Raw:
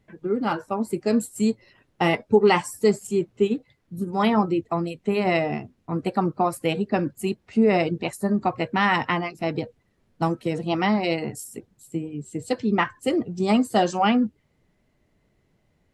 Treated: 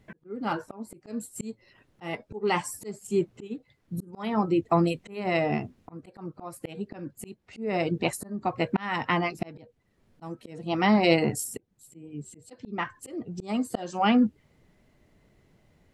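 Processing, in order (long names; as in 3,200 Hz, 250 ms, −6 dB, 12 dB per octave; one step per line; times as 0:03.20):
volume swells 704 ms
level +4.5 dB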